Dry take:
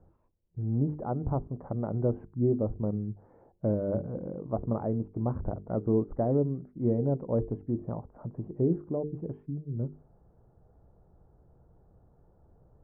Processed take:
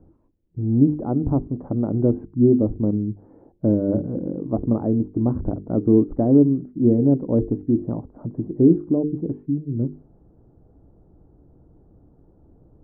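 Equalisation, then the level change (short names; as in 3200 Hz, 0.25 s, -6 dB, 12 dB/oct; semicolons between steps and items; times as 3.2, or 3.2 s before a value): air absorption 350 m; bell 290 Hz +12.5 dB 0.73 oct; low shelf 410 Hz +4.5 dB; +2.0 dB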